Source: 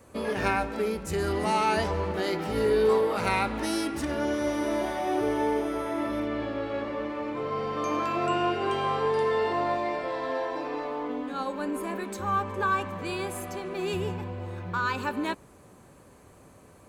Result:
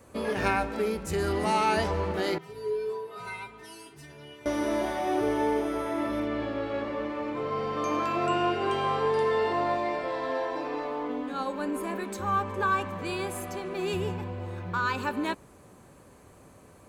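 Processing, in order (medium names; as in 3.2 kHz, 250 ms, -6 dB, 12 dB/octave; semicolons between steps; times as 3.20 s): 2.38–4.46 s: feedback comb 140 Hz, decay 0.21 s, harmonics odd, mix 100%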